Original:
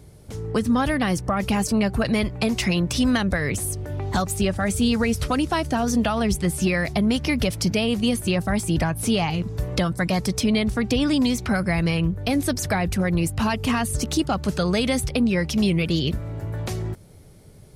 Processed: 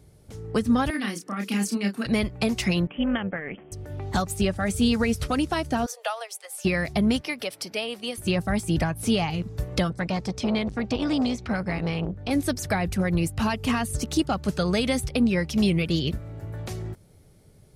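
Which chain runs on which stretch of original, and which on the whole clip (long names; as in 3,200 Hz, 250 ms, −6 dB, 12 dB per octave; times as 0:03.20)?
0:00.90–0:02.06: Butterworth high-pass 190 Hz 48 dB per octave + parametric band 670 Hz −12.5 dB 1.3 octaves + double-tracking delay 30 ms −4 dB
0:02.87–0:03.72: linear-phase brick-wall band-pass 150–3,300 Hz + amplitude modulation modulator 300 Hz, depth 35%
0:05.86–0:06.65: Butterworth high-pass 480 Hz 72 dB per octave + high-shelf EQ 8,600 Hz +7 dB + expander for the loud parts, over −34 dBFS
0:07.21–0:08.18: high-pass filter 440 Hz + parametric band 6,700 Hz −8.5 dB 0.23 octaves
0:09.90–0:12.31: low-pass filter 6,100 Hz + saturating transformer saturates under 360 Hz
whole clip: notch filter 1,000 Hz, Q 22; expander for the loud parts 1.5 to 1, over −30 dBFS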